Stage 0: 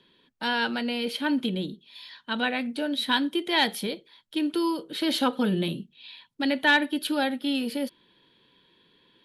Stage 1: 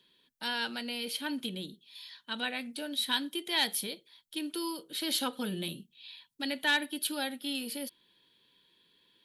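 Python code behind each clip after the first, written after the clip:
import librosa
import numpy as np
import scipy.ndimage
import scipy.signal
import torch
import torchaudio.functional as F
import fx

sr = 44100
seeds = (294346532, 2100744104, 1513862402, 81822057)

y = F.preemphasis(torch.from_numpy(x), 0.8).numpy()
y = y * librosa.db_to_amplitude(3.0)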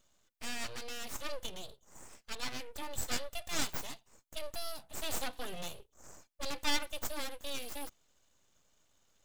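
y = x + 0.37 * np.pad(x, (int(3.4 * sr / 1000.0), 0))[:len(x)]
y = np.abs(y)
y = y * librosa.db_to_amplitude(-3.0)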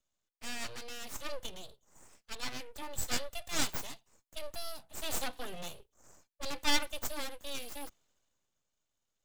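y = fx.band_widen(x, sr, depth_pct=40)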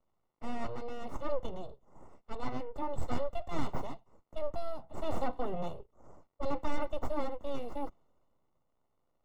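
y = np.clip(10.0 ** (29.0 / 20.0) * x, -1.0, 1.0) / 10.0 ** (29.0 / 20.0)
y = fx.dmg_crackle(y, sr, seeds[0], per_s=180.0, level_db=-66.0)
y = scipy.signal.savgol_filter(y, 65, 4, mode='constant')
y = y * librosa.db_to_amplitude(8.5)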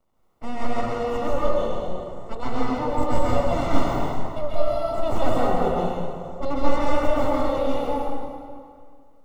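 y = fx.rev_plate(x, sr, seeds[1], rt60_s=2.1, hf_ratio=0.75, predelay_ms=115, drr_db=-6.5)
y = y * librosa.db_to_amplitude(7.0)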